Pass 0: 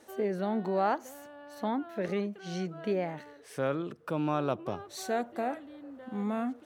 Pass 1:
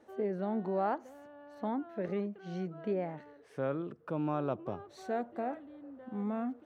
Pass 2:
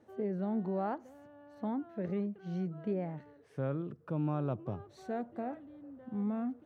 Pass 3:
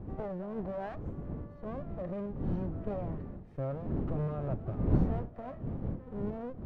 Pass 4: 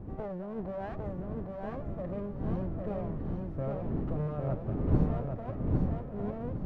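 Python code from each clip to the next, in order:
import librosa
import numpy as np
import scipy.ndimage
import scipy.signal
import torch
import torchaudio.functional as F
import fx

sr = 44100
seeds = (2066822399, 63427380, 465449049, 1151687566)

y1 = fx.lowpass(x, sr, hz=1200.0, slope=6)
y1 = y1 * librosa.db_to_amplitude(-2.5)
y2 = fx.peak_eq(y1, sr, hz=110.0, db=12.5, octaves=2.0)
y2 = y2 * librosa.db_to_amplitude(-5.0)
y3 = fx.lower_of_two(y2, sr, delay_ms=1.6)
y3 = fx.dmg_wind(y3, sr, seeds[0], corner_hz=200.0, level_db=-38.0)
y3 = fx.lowpass(y3, sr, hz=1200.0, slope=6)
y3 = y3 * librosa.db_to_amplitude(1.5)
y4 = fx.echo_feedback(y3, sr, ms=804, feedback_pct=30, wet_db=-3)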